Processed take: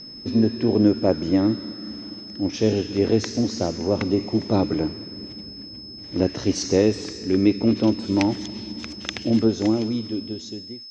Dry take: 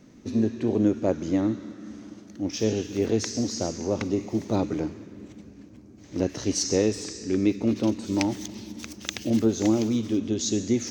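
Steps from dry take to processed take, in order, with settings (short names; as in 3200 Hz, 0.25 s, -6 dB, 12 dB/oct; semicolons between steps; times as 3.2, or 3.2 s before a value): ending faded out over 1.78 s; whine 5200 Hz -37 dBFS; air absorption 120 m; gain +5 dB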